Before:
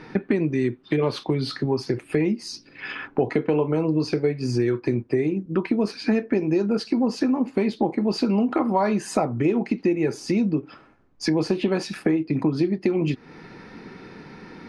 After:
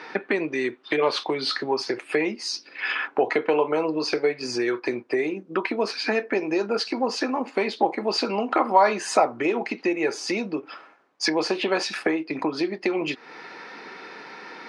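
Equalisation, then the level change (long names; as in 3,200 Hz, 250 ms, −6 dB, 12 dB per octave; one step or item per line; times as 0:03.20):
band-pass filter 600–7,100 Hz
+7.0 dB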